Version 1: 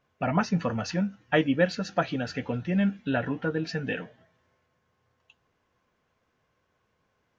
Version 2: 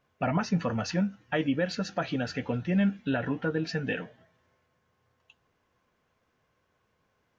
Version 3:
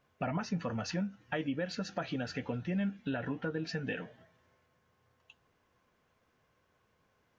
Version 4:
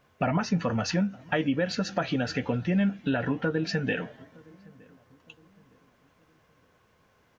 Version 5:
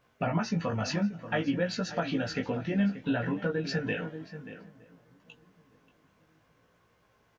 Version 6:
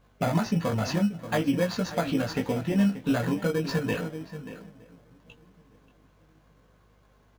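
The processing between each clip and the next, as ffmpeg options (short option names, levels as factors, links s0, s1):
-af "alimiter=limit=0.133:level=0:latency=1:release=68"
-af "acompressor=threshold=0.0141:ratio=2"
-filter_complex "[0:a]asplit=2[s0][s1];[s1]adelay=915,lowpass=f=900:p=1,volume=0.0631,asplit=2[s2][s3];[s3]adelay=915,lowpass=f=900:p=1,volume=0.45,asplit=2[s4][s5];[s5]adelay=915,lowpass=f=900:p=1,volume=0.45[s6];[s0][s2][s4][s6]amix=inputs=4:normalize=0,volume=2.66"
-filter_complex "[0:a]asplit=2[s0][s1];[s1]adelay=583.1,volume=0.251,highshelf=f=4000:g=-13.1[s2];[s0][s2]amix=inputs=2:normalize=0,flanger=delay=17:depth=2.5:speed=0.57"
-filter_complex "[0:a]asplit=2[s0][s1];[s1]acrusher=samples=16:mix=1:aa=0.000001,volume=0.631[s2];[s0][s2]amix=inputs=2:normalize=0,aeval=exprs='val(0)+0.000794*(sin(2*PI*50*n/s)+sin(2*PI*2*50*n/s)/2+sin(2*PI*3*50*n/s)/3+sin(2*PI*4*50*n/s)/4+sin(2*PI*5*50*n/s)/5)':c=same"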